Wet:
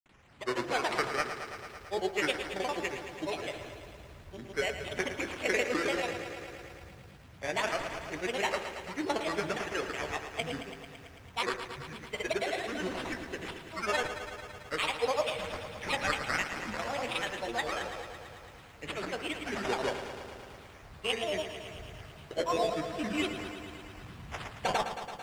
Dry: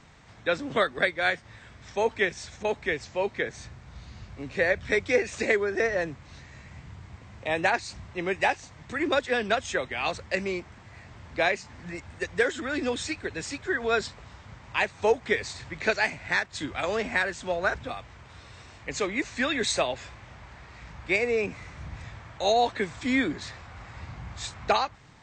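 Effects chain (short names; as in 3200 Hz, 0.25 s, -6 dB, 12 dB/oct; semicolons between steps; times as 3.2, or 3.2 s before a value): high shelf 4800 Hz +9 dB; sample-rate reducer 4500 Hz, jitter 0%; grains, pitch spread up and down by 7 st; air absorption 60 m; de-hum 55.81 Hz, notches 32; lo-fi delay 0.111 s, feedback 80%, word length 9-bit, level -10 dB; gain -5.5 dB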